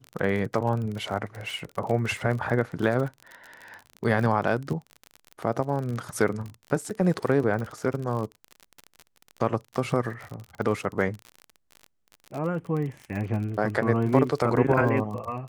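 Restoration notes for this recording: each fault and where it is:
crackle 39/s -31 dBFS

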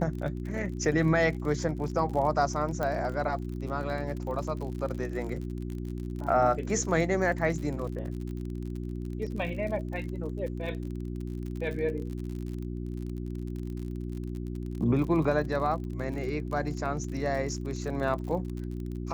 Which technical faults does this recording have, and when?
crackle 46/s -36 dBFS
hum 60 Hz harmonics 6 -35 dBFS
2.83 pop -18 dBFS

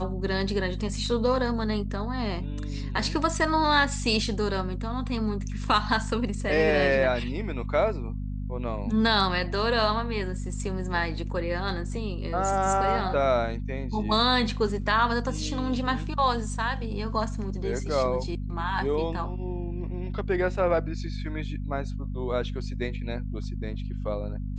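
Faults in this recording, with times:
hum 50 Hz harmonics 5 -32 dBFS

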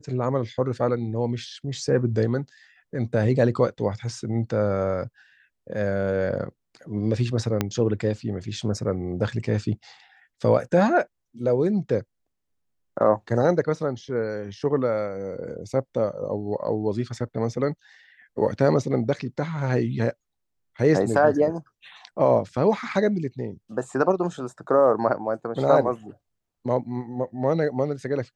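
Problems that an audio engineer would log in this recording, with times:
7.61 pop -8 dBFS

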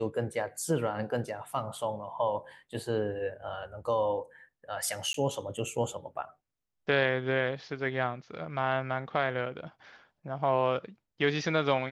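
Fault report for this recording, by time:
5.13–5.14 gap 13 ms

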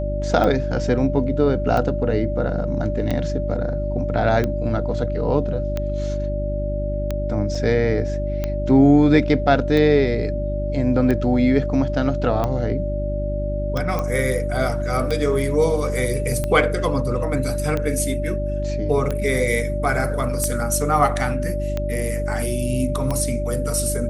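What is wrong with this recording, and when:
hum 50 Hz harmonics 7 -25 dBFS
tick 45 rpm -11 dBFS
tone 590 Hz -26 dBFS
7.55 gap 4.6 ms
13.99 pop -12 dBFS

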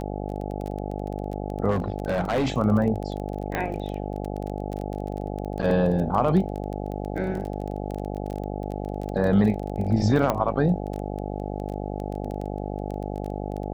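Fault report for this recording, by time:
buzz 50 Hz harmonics 17 -31 dBFS
crackle 17/s -29 dBFS
1.7–2.52 clipped -19.5 dBFS
3.55 pop -13 dBFS
5.62–5.63 gap 7.6 ms
10.3 pop -10 dBFS

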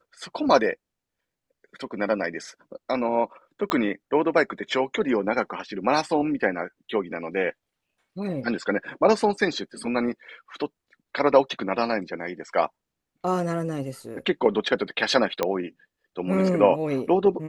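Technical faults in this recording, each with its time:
3.7 pop -11 dBFS
15.43 pop -9 dBFS

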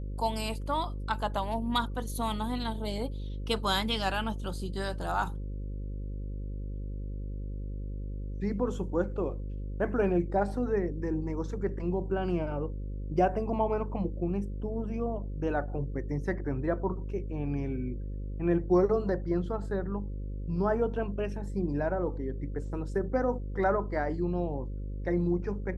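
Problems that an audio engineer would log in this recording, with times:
buzz 50 Hz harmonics 11 -36 dBFS

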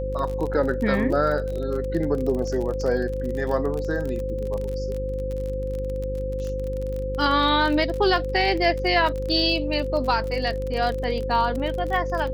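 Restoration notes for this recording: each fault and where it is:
buzz 50 Hz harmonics 11 -30 dBFS
crackle 34/s -28 dBFS
tone 520 Hz -28 dBFS

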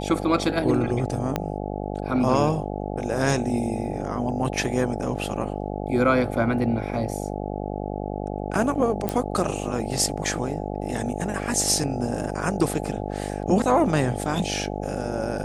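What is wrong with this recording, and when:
buzz 50 Hz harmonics 17 -30 dBFS
1.36 pop -10 dBFS
9.09 pop -10 dBFS

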